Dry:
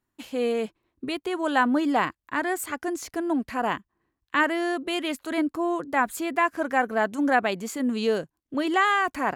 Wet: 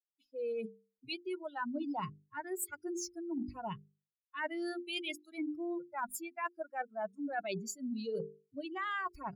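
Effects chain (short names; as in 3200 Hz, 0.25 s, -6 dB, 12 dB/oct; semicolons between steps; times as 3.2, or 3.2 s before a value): per-bin expansion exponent 3; notches 50/100/150/200/250/300/350/400/450 Hz; reverse; compressor 8:1, threshold -40 dBFS, peak gain reduction 19 dB; reverse; gain +4.5 dB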